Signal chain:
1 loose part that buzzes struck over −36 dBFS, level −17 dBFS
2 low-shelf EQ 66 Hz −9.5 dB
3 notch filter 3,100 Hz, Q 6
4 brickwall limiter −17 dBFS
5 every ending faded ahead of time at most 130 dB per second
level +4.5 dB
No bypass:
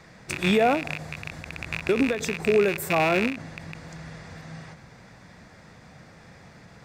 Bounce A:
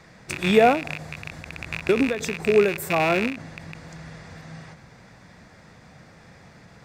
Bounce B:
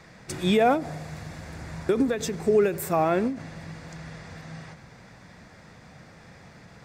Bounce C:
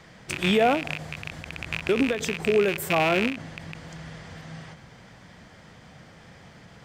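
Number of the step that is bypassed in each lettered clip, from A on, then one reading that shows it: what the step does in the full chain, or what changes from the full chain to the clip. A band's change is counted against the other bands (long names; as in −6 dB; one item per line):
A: 4, change in crest factor +5.0 dB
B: 1, 2 kHz band −7.5 dB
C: 3, 4 kHz band +3.0 dB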